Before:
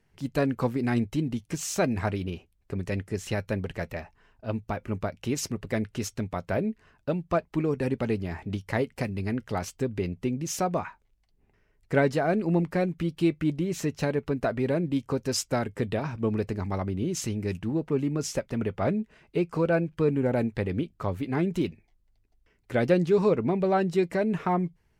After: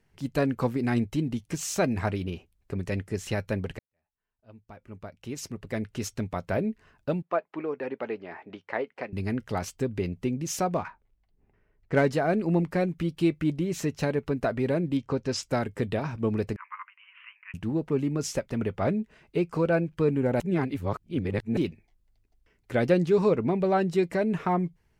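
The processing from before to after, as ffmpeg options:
-filter_complex "[0:a]asettb=1/sr,asplit=3[s0][s1][s2];[s0]atrim=end=7.224[s3];[s1]atrim=start=7.22:end=9.13,asetpts=PTS-STARTPTS,afade=t=in:d=0.004:c=qsin,afade=t=out:st=1.906:d=0.004:c=qsin,highpass=440,lowpass=2300[s4];[s2]atrim=start=9.126[s5];[s3][s4]acrossfade=d=0.004:c1=hsin:c2=qsin[s6];[s6][s5]acrossfade=d=0.004:c1=qsin:c2=hsin,asettb=1/sr,asplit=3[s7][s8][s9];[s7]atrim=end=10.754[s10];[s8]atrim=start=10.75:end=12.06,asetpts=PTS-STARTPTS,afade=t=in:d=0.004:c=qsin,afade=t=out:st=1.306:d=0.004:c=qsin,adynamicsmooth=sensitivity=8:basefreq=2800[s11];[s9]atrim=start=12.056[s12];[s10][s11]acrossfade=d=0.004:c1=hsin:c2=qsin[s13];[s13][s12]acrossfade=d=0.004:c1=qsin:c2=hsin,asettb=1/sr,asplit=3[s14][s15][s16];[s14]atrim=end=14.974[s17];[s15]atrim=start=14.97:end=15.43,asetpts=PTS-STARTPTS,afade=t=in:d=0.004:c=qsin,afade=t=out:st=0.456:d=0.004:c=qsin,lowpass=5200[s18];[s16]atrim=start=15.426[s19];[s17][s18]acrossfade=d=0.004:c1=hsin:c2=qsin[s20];[s20][s19]acrossfade=d=0.004:c1=qsin:c2=hsin,asettb=1/sr,asplit=3[s21][s22][s23];[s21]atrim=end=16.564[s24];[s22]atrim=start=16.56:end=17.54,asetpts=PTS-STARTPTS,afade=t=in:d=0.004:c=qsin,afade=t=out:st=0.976:d=0.004:c=qsin,asuperpass=centerf=1700:order=20:qfactor=0.87[s25];[s23]atrim=start=17.536[s26];[s24][s25]acrossfade=d=0.004:c1=hsin:c2=qsin[s27];[s27][s26]acrossfade=d=0.004:c1=qsin:c2=hsin,asplit=4[s28][s29][s30][s31];[s28]atrim=end=3.79,asetpts=PTS-STARTPTS,afade=t=out:st=3.786:d=0.004:c=hsin[s32];[s29]atrim=start=3.79:end=20.402,asetpts=PTS-STARTPTS,afade=t=in:d=2.36:c=qua[s33];[s30]atrim=start=20.398:end=21.572,asetpts=PTS-STARTPTS,areverse[s34];[s31]atrim=start=21.568[s35];[s32][s33]concat=n=2:v=0:a=1[s36];[s36][s34]acrossfade=d=0.004:c1=hsin:c2=hsin[s37];[s37][s35]acrossfade=d=0.004:c1=hsin:c2=hsin"

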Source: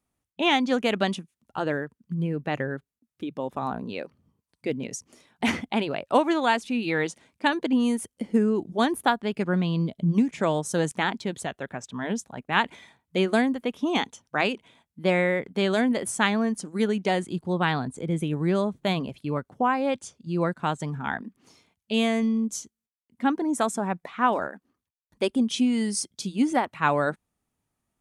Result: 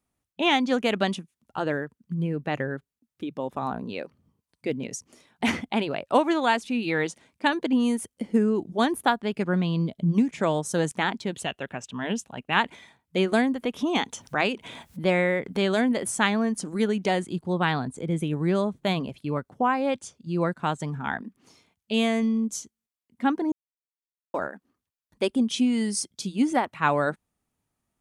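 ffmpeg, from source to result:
-filter_complex "[0:a]asettb=1/sr,asplit=3[s0][s1][s2];[s0]atrim=end=11.344[s3];[s1]atrim=start=11.34:end=12.54,asetpts=PTS-STARTPTS,afade=t=in:d=0.004:c=qsin,afade=t=out:st=1.196:d=0.004:c=qsin,equalizer=f=2800:w=4.5:g=12[s4];[s2]atrim=start=12.536[s5];[s3][s4]acrossfade=d=0.004:c1=hsin:c2=qsin[s6];[s6][s5]acrossfade=d=0.004:c1=qsin:c2=hsin,asettb=1/sr,asplit=3[s7][s8][s9];[s7]atrim=end=13.324[s10];[s8]atrim=start=13.32:end=17.22,asetpts=PTS-STARTPTS,afade=t=in:d=0.004:c=qsin,afade=t=out:st=3.896:d=0.004:c=qsin,acompressor=mode=upward:threshold=0.0562:ratio=2.5:attack=3.2:release=140:knee=2.83:detection=peak[s11];[s9]atrim=start=17.216[s12];[s10][s11]acrossfade=d=0.004:c1=hsin:c2=qsin[s13];[s13][s12]acrossfade=d=0.004:c1=qsin:c2=hsin,asplit=3[s14][s15][s16];[s14]atrim=end=23.52,asetpts=PTS-STARTPTS,afade=t=out:st=23.516:d=0.004:c=hsin[s17];[s15]atrim=start=23.52:end=24.34,asetpts=PTS-STARTPTS,volume=0[s18];[s16]atrim=start=24.34,asetpts=PTS-STARTPTS,afade=t=in:d=0.004:c=hsin[s19];[s17][s18][s19]concat=n=3:v=0:a=1"

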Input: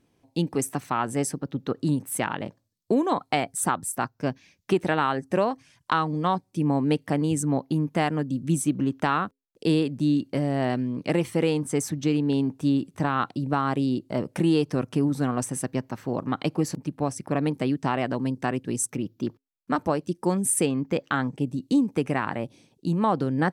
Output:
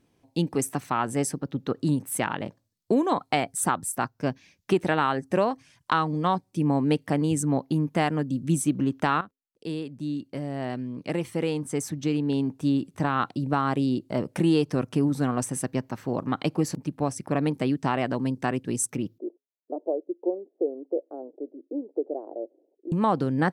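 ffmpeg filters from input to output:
-filter_complex "[0:a]asettb=1/sr,asplit=3[s0][s1][s2];[s0]atrim=end=19.184[s3];[s1]atrim=start=19.18:end=22.92,asetpts=PTS-STARTPTS,afade=t=in:d=0.004:c=qsin,afade=t=out:st=3.736:d=0.004:c=qsin,asuperpass=centerf=470:order=8:qfactor=1.3[s4];[s2]atrim=start=22.916[s5];[s3][s4]acrossfade=d=0.004:c1=hsin:c2=qsin[s6];[s6][s5]acrossfade=d=0.004:c1=qsin:c2=hsin,asplit=2[s7][s8];[s7]atrim=end=9.21,asetpts=PTS-STARTPTS,afade=t=out:st=9.206:d=0.004:c=hsin:silence=0.211349[s9];[s8]atrim=start=9.21,asetpts=PTS-STARTPTS,afade=t=in:d=4.09:silence=0.211349[s10];[s9][s10]concat=n=2:v=0:a=1"

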